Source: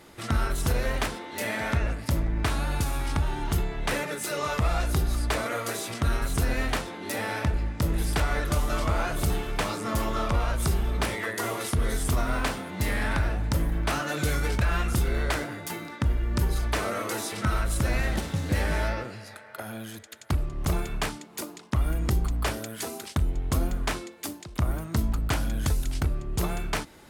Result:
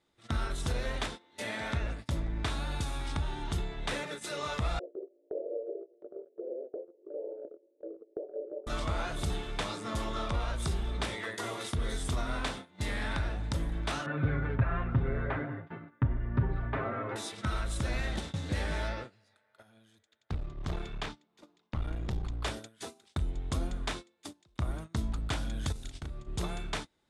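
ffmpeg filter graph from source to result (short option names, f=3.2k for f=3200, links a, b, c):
-filter_complex "[0:a]asettb=1/sr,asplit=3[a][b][c];[a]atrim=end=4.794[d];[b]atrim=start=4.79:end=8.67,asetpts=PTS-STARTPTS,afade=t=in:d=0.004:c=qsin,afade=t=out:st=3.876:d=0.004:c=qsin,acontrast=59,asuperpass=centerf=450:order=8:qfactor=1.9[e];[c]atrim=start=8.666[f];[d][e]acrossfade=d=0.004:c1=hsin:c2=qsin[g];[g][f]acrossfade=d=0.004:c1=qsin:c2=hsin,asettb=1/sr,asplit=3[h][i][j];[h]atrim=end=14.064[k];[i]atrim=start=14.06:end=17.16,asetpts=PTS-STARTPTS,afade=t=in:d=0.004:c=qsin,afade=t=out:st=3.096:d=0.004:c=qsin,lowpass=f=2k:w=0.5412,lowpass=f=2k:w=1.3066,equalizer=f=100:t=o:w=2.3:g=6,aecho=1:1:7.5:0.7,atrim=end_sample=136710[l];[j]atrim=start=17.156[m];[k][l]acrossfade=d=0.004:c1=hsin:c2=qsin[n];[n][m]acrossfade=d=0.004:c1=qsin:c2=hsin,asettb=1/sr,asplit=3[o][p][q];[o]atrim=end=20.094[r];[p]atrim=start=20.09:end=22.44,asetpts=PTS-STARTPTS,afade=t=in:d=0.004:c=qsin,afade=t=out:st=2.346:d=0.004:c=qsin,equalizer=f=9.6k:t=o:w=1:g=-13.5,aeval=exprs='clip(val(0),-1,0.0335)':c=same[s];[q]atrim=start=22.436[t];[r][s]acrossfade=d=0.004:c1=hsin:c2=qsin[u];[u][t]acrossfade=d=0.004:c1=qsin:c2=hsin,asettb=1/sr,asplit=3[v][w][x];[v]atrim=end=25.724[y];[w]atrim=start=25.72:end=26.28,asetpts=PTS-STARTPTS,afade=t=in:d=0.004:c=qsin,afade=t=out:st=0.556:d=0.004:c=qsin,acompressor=threshold=-28dB:ratio=12:attack=3.2:release=140:knee=1:detection=peak,asplit=2[z][aa];[aa]adelay=36,volume=-5.5dB[ab];[z][ab]amix=inputs=2:normalize=0,atrim=end_sample=24696[ac];[x]atrim=start=26.276[ad];[y][ac]acrossfade=d=0.004:c1=hsin:c2=qsin[ae];[ae][ad]acrossfade=d=0.004:c1=qsin:c2=hsin,agate=range=-18dB:threshold=-33dB:ratio=16:detection=peak,lowpass=f=9.6k:w=0.5412,lowpass=f=9.6k:w=1.3066,equalizer=f=3.6k:w=5.2:g=8,volume=-7dB"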